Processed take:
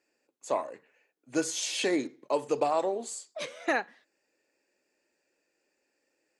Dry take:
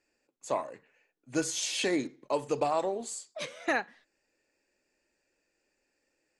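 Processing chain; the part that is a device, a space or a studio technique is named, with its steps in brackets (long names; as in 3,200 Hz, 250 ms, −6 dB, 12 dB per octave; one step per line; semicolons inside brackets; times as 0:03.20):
filter by subtraction (in parallel: low-pass filter 370 Hz 12 dB per octave + polarity inversion)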